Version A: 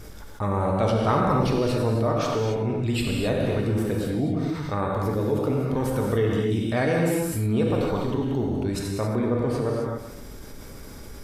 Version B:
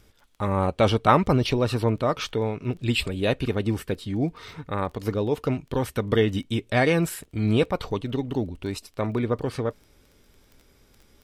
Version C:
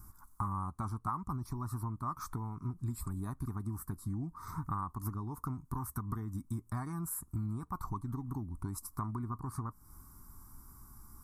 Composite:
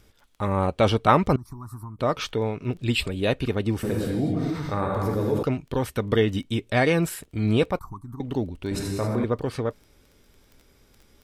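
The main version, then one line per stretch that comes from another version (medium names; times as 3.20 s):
B
1.36–1.99 s: from C
3.83–5.43 s: from A
7.79–8.20 s: from C
8.71–9.24 s: from A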